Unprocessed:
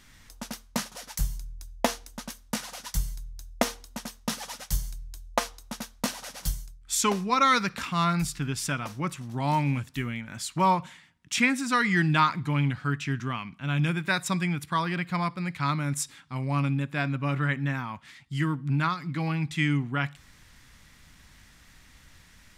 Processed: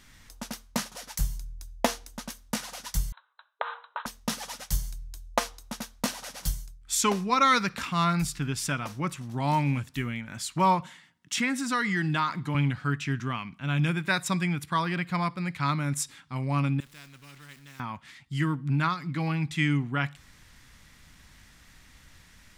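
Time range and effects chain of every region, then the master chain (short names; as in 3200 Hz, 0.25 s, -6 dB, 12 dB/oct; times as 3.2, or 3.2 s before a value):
3.12–4.06 band shelf 1200 Hz +15 dB 1.1 oct + compressor, threshold -27 dBFS + brick-wall FIR band-pass 430–4100 Hz
10.81–12.55 HPF 130 Hz + notch 2400 Hz, Q 13 + compressor 2:1, threshold -25 dBFS
16.8–17.8 zero-crossing step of -42 dBFS + passive tone stack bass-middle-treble 6-0-2 + spectral compressor 2:1
whole clip: dry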